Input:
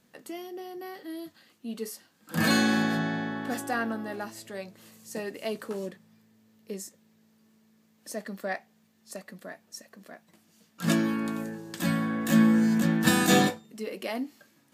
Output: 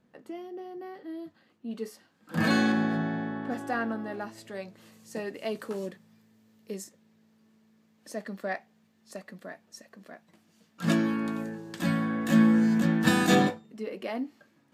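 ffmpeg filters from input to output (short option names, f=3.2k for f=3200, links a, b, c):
-af "asetnsamples=n=441:p=0,asendcmd='1.71 lowpass f 2400;2.72 lowpass f 1200;3.61 lowpass f 2400;4.38 lowpass f 4100;5.55 lowpass f 10000;6.84 lowpass f 4000;13.35 lowpass f 2000',lowpass=f=1.1k:p=1"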